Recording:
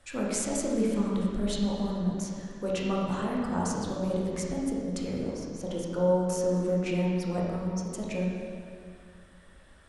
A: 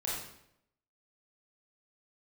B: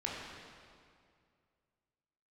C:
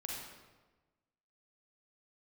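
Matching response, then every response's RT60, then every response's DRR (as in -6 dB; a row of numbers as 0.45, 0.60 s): B; 0.75, 2.2, 1.2 s; -6.0, -4.5, -3.0 dB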